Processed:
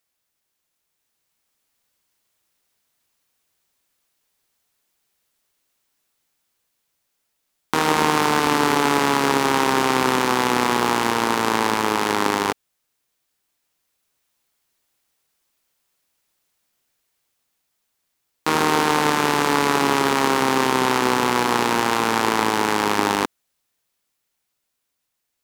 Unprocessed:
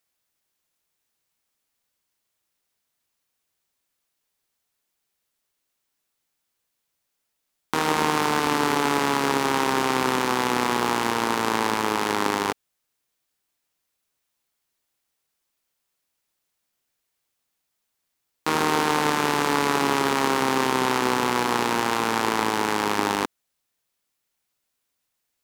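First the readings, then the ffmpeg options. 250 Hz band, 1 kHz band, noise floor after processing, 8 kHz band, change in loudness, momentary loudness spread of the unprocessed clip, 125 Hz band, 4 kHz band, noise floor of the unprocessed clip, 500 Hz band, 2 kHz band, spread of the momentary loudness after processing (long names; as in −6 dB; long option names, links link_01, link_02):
+3.5 dB, +3.5 dB, −77 dBFS, +3.5 dB, +3.5 dB, 3 LU, +3.5 dB, +3.5 dB, −79 dBFS, +3.5 dB, +3.5 dB, 3 LU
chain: -af "dynaudnorm=framelen=160:gausssize=17:maxgain=5dB,volume=1dB"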